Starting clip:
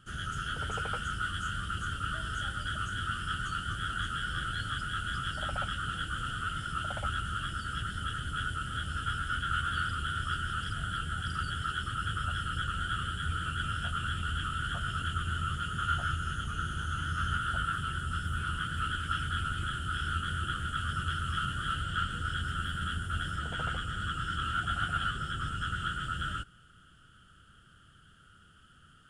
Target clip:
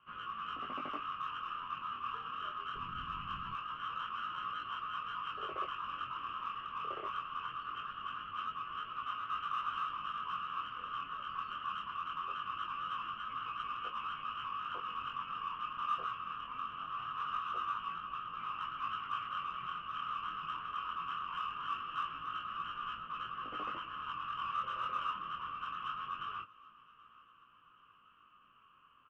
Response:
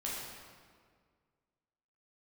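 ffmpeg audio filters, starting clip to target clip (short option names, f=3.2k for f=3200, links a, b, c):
-filter_complex "[0:a]highpass=f=330:t=q:w=0.5412,highpass=f=330:t=q:w=1.307,lowpass=f=3k:t=q:w=0.5176,lowpass=f=3k:t=q:w=0.7071,lowpass=f=3k:t=q:w=1.932,afreqshift=-190,asplit=3[a][b][c];[a]afade=t=out:st=2.74:d=0.02[d];[b]asubboost=boost=7.5:cutoff=240,afade=t=in:st=2.74:d=0.02,afade=t=out:st=3.53:d=0.02[e];[c]afade=t=in:st=3.53:d=0.02[f];[d][e][f]amix=inputs=3:normalize=0,asplit=2[g][h];[h]asoftclip=type=tanh:threshold=-33.5dB,volume=-9dB[i];[g][i]amix=inputs=2:normalize=0,aecho=1:1:776|1552|2328|3104:0.0708|0.0389|0.0214|0.0118,flanger=delay=17.5:depth=7.7:speed=0.22,volume=-3dB"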